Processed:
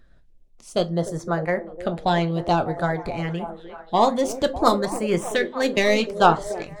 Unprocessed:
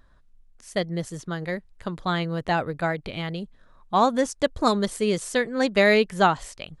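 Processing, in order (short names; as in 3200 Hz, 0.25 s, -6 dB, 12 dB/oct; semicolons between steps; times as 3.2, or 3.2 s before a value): tracing distortion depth 0.038 ms; 0.97–2.31 bell 720 Hz +8.5 dB 1.3 oct; 5.42–6.38 gate -28 dBFS, range -10 dB; reverb RT60 0.30 s, pre-delay 6 ms, DRR 7 dB; LFO notch saw up 0.56 Hz 920–4900 Hz; high shelf 5200 Hz -4.5 dB; delay with a stepping band-pass 0.301 s, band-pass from 380 Hz, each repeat 0.7 oct, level -8 dB; harmonic-percussive split percussive +6 dB; gain -1 dB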